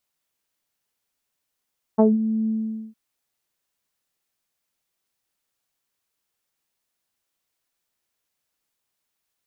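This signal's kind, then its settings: synth note saw A3 24 dB/oct, low-pass 250 Hz, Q 1.8, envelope 2 oct, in 0.15 s, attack 17 ms, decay 0.18 s, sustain -12 dB, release 0.46 s, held 0.50 s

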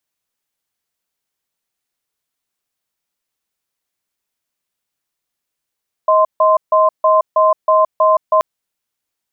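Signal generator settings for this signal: cadence 631 Hz, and 1040 Hz, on 0.17 s, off 0.15 s, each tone -11 dBFS 2.33 s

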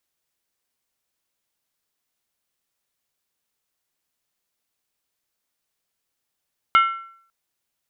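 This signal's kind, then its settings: skin hit length 0.55 s, lowest mode 1350 Hz, decay 0.60 s, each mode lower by 7 dB, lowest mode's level -9.5 dB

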